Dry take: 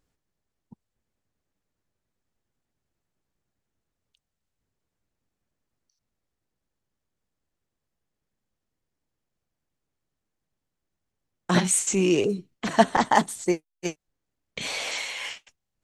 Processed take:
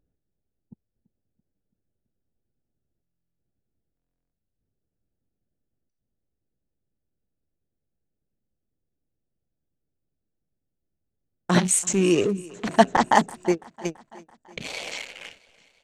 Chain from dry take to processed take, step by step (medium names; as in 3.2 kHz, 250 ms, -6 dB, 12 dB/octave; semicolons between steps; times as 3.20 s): local Wiener filter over 41 samples; feedback delay 334 ms, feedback 59%, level -22 dB; buffer glitch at 3.02/3.95 s, samples 1024, times 15; trim +2 dB